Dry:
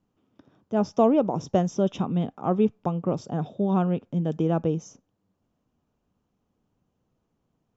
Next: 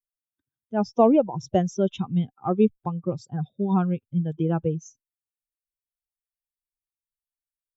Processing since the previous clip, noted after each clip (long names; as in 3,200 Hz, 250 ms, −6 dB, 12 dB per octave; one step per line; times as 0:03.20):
spectral dynamics exaggerated over time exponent 2
level +4.5 dB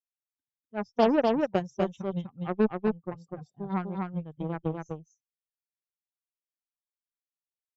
harmonic generator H 7 −19 dB, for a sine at −6 dBFS
single-tap delay 248 ms −3 dB
level −5 dB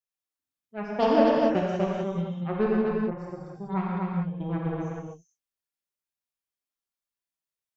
convolution reverb, pre-delay 3 ms, DRR −3.5 dB
level −2.5 dB